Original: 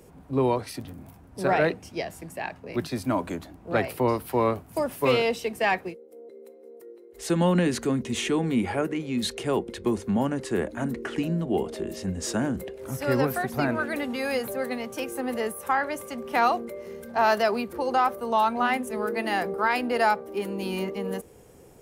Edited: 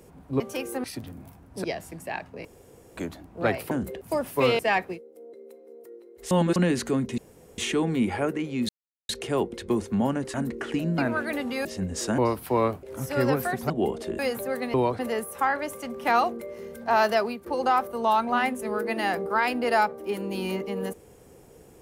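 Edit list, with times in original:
0.4–0.65 swap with 14.83–15.27
1.45–1.94 cut
2.75–3.27 room tone
4.01–4.66 swap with 12.44–12.74
5.24–5.55 cut
7.27–7.52 reverse
8.14 insert room tone 0.40 s
9.25 insert silence 0.40 s
10.5–10.78 cut
11.42–11.91 swap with 13.61–14.28
17.45–17.74 fade out, to -10.5 dB

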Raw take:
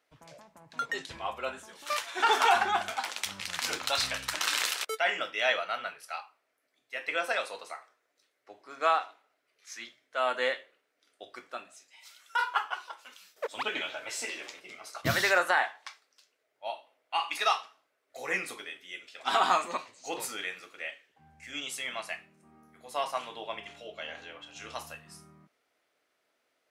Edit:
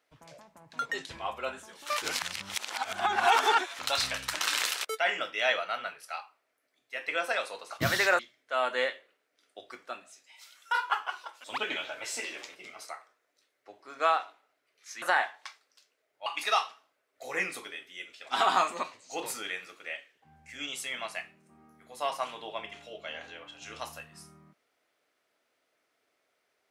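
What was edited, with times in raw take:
2.02–3.79 reverse
7.7–9.83 swap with 14.94–15.43
13.08–13.49 cut
16.67–17.2 cut

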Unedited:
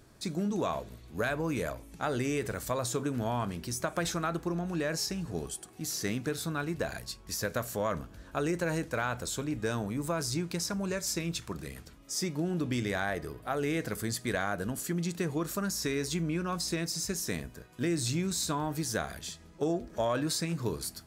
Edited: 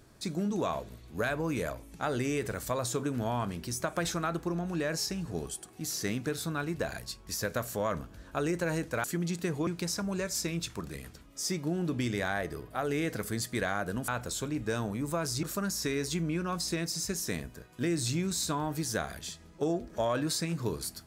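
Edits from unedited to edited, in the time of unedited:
9.04–10.39 swap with 14.8–15.43

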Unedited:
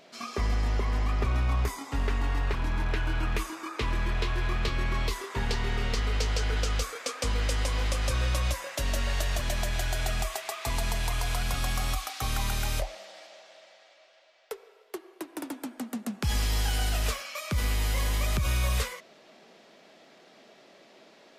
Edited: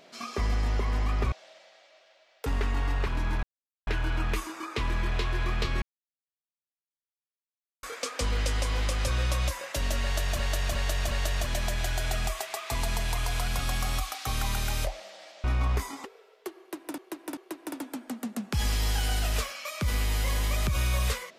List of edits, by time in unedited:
1.32–1.93 swap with 13.39–14.53
2.9 insert silence 0.44 s
4.85–6.86 mute
9.06–9.42 loop, 4 plays
15.07–15.46 loop, 3 plays

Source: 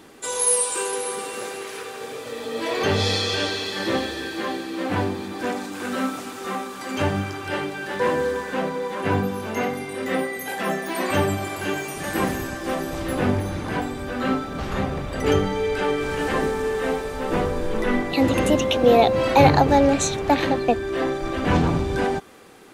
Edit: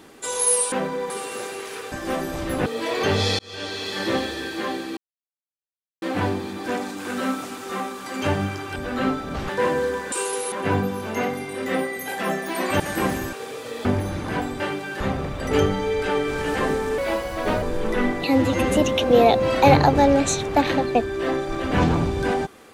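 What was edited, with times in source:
0.72–1.12 swap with 8.54–8.92
1.94–2.46 swap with 12.51–13.25
3.19–3.74 fade in
4.77 insert silence 1.05 s
7.51–7.91 swap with 14–14.73
11.2–11.98 cut
16.71–17.52 speed 126%
18.15–18.48 stretch 1.5×

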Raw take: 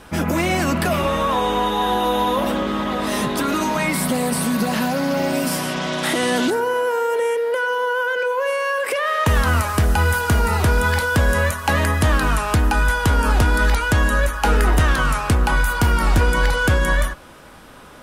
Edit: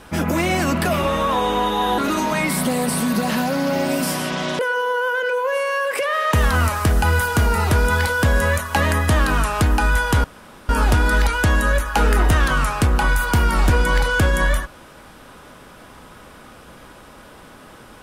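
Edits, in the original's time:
1.98–3.42 cut
6.03–7.52 cut
13.17 insert room tone 0.45 s

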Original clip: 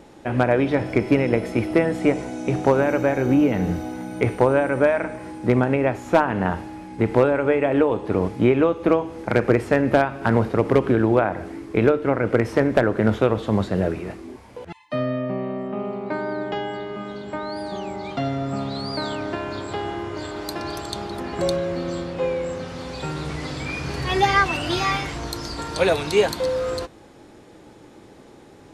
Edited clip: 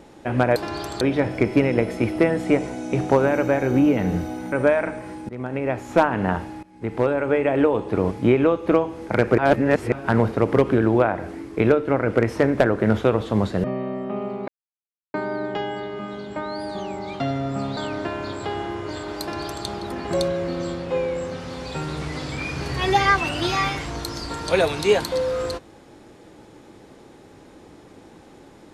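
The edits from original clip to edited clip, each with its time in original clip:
4.07–4.69 cut
5.46–6.07 fade in, from -23.5 dB
6.8–7.81 fade in equal-power, from -18.5 dB
9.55–10.09 reverse
13.81–15.27 cut
16.11 insert silence 0.66 s
18.74–19.05 cut
20.49–20.94 copy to 0.56

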